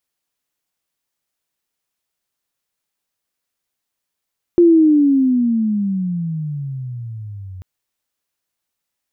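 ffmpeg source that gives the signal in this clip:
-f lavfi -i "aevalsrc='pow(10,(-6-24*t/3.04)/20)*sin(2*PI*351*3.04/(-23.5*log(2)/12)*(exp(-23.5*log(2)/12*t/3.04)-1))':d=3.04:s=44100"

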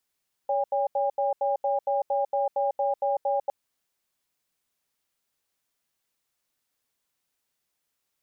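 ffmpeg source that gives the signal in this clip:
-f lavfi -i "aevalsrc='0.0562*(sin(2*PI*563*t)+sin(2*PI*807*t))*clip(min(mod(t,0.23),0.15-mod(t,0.23))/0.005,0,1)':d=3.01:s=44100"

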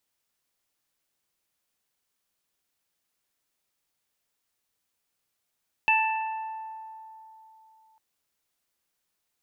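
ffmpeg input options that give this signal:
-f lavfi -i "aevalsrc='0.0794*pow(10,-3*t/3.35)*sin(2*PI*882*t)+0.0282*pow(10,-3*t/1.64)*sin(2*PI*1764*t)+0.126*pow(10,-3*t/1.05)*sin(2*PI*2646*t)':d=2.1:s=44100"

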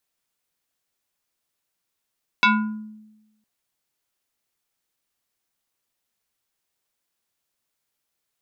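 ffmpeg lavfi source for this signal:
-f lavfi -i "aevalsrc='0.282*pow(10,-3*t/1.04)*sin(2*PI*215*t+2.8*pow(10,-3*t/0.65)*sin(2*PI*5.67*215*t))':d=1.01:s=44100"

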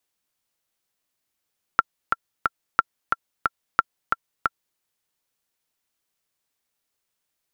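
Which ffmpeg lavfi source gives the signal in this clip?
-f lavfi -i "aevalsrc='pow(10,(-2-4.5*gte(mod(t,3*60/180),60/180))/20)*sin(2*PI*1360*mod(t,60/180))*exp(-6.91*mod(t,60/180)/0.03)':d=3:s=44100"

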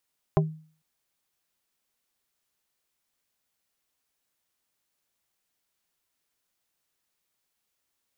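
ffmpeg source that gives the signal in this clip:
-f lavfi -i "aevalsrc='0.15*pow(10,-3*t/0.44)*sin(2*PI*157*t)+0.119*pow(10,-3*t/0.147)*sin(2*PI*392.5*t)+0.0944*pow(10,-3*t/0.083)*sin(2*PI*628*t)+0.075*pow(10,-3*t/0.064)*sin(2*PI*785*t)+0.0596*pow(10,-3*t/0.047)*sin(2*PI*1020.5*t)':d=0.45:s=44100"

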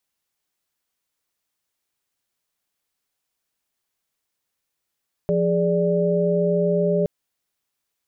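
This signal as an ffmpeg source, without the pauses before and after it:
-f lavfi -i "aevalsrc='0.0841*(sin(2*PI*174.61*t)+sin(2*PI*415.3*t)+sin(2*PI*587.33*t))':d=1.77:s=44100"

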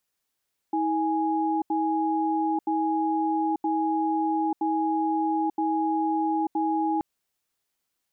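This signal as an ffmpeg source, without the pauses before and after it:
-f lavfi -i "aevalsrc='0.0562*(sin(2*PI*320*t)+sin(2*PI*830*t))*clip(min(mod(t,0.97),0.89-mod(t,0.97))/0.005,0,1)':d=6.28:s=44100"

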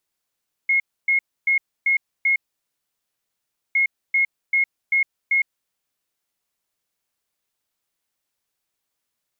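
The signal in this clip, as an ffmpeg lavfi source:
-f lavfi -i "aevalsrc='0.178*sin(2*PI*2160*t)*clip(min(mod(mod(t,3.06),0.39),0.11-mod(mod(t,3.06),0.39))/0.005,0,1)*lt(mod(t,3.06),1.95)':d=6.12:s=44100"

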